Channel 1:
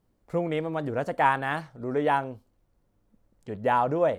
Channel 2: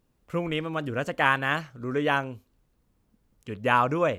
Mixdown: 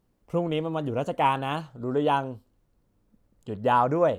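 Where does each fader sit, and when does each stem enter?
-1.0 dB, -7.5 dB; 0.00 s, 0.00 s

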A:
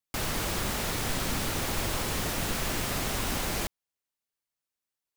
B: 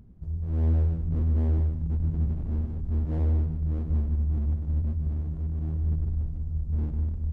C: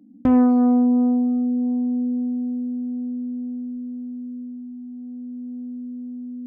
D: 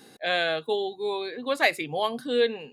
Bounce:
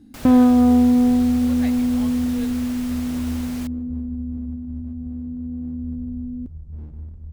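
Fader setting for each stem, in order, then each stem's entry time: -7.5 dB, -7.5 dB, +2.5 dB, -17.0 dB; 0.00 s, 0.00 s, 0.00 s, 0.00 s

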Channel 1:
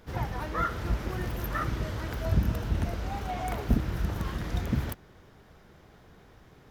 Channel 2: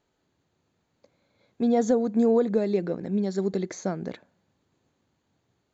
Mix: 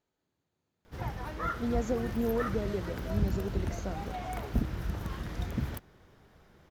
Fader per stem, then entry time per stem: -4.5 dB, -9.5 dB; 0.85 s, 0.00 s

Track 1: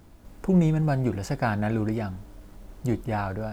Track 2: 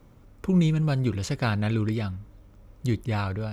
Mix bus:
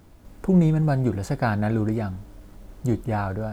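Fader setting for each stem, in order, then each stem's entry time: +0.5 dB, -10.0 dB; 0.00 s, 0.00 s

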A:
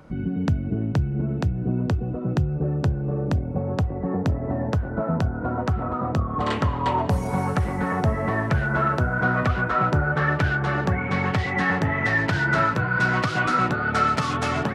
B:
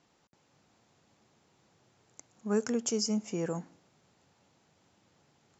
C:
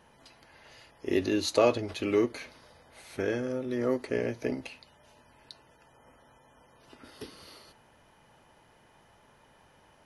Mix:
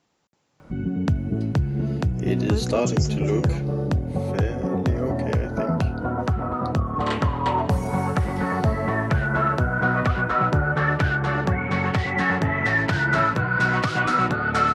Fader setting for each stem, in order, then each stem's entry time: +0.5 dB, -1.0 dB, -0.5 dB; 0.60 s, 0.00 s, 1.15 s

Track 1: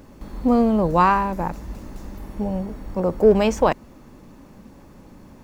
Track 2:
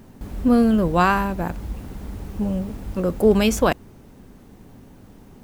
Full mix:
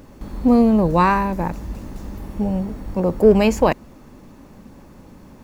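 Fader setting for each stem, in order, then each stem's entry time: +1.5 dB, -8.5 dB; 0.00 s, 0.00 s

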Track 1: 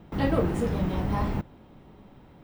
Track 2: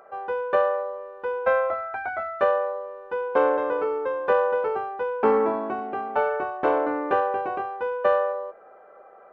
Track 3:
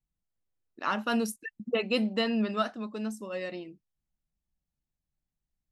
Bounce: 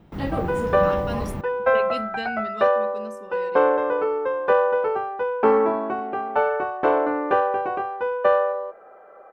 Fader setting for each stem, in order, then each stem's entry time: -2.0 dB, +2.5 dB, -5.5 dB; 0.00 s, 0.20 s, 0.00 s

